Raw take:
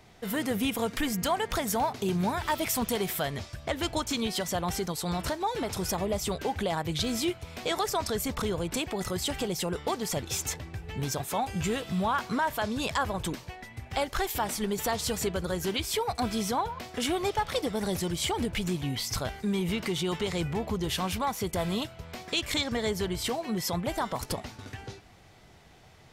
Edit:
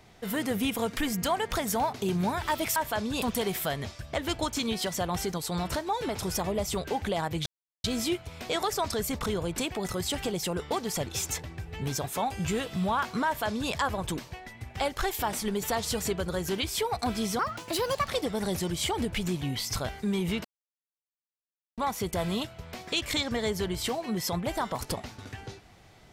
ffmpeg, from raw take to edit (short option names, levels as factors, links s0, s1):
-filter_complex "[0:a]asplit=8[s0][s1][s2][s3][s4][s5][s6][s7];[s0]atrim=end=2.762[s8];[s1]atrim=start=12.418:end=12.882[s9];[s2]atrim=start=2.758:end=7,asetpts=PTS-STARTPTS,afade=t=out:st=4.238:d=0.004:c=hsin,apad=pad_dur=0.38[s10];[s3]atrim=start=7:end=16.554,asetpts=PTS-STARTPTS,afade=t=in:d=0.004:c=hsin[s11];[s4]atrim=start=16.55:end=17.49,asetpts=PTS-STARTPTS,asetrate=59535,aresample=44100[s12];[s5]atrim=start=17.486:end=19.85,asetpts=PTS-STARTPTS,afade=t=out:st=2.36:d=0.004:c=hsin[s13];[s6]atrim=start=19.85:end=21.18,asetpts=PTS-STARTPTS,volume=0[s14];[s7]atrim=start=21.18,asetpts=PTS-STARTPTS,afade=t=in:d=0.004:c=hsin[s15];[s8][s9]acrossfade=d=0.004:c1=hsin:c2=hsin[s16];[s10][s11]concat=n=2:v=0:a=1[s17];[s16][s17]acrossfade=d=0.004:c1=hsin:c2=hsin[s18];[s18][s12]acrossfade=d=0.004:c1=hsin:c2=hsin[s19];[s13][s14][s15]concat=n=3:v=0:a=1[s20];[s19][s20]acrossfade=d=0.004:c1=hsin:c2=hsin"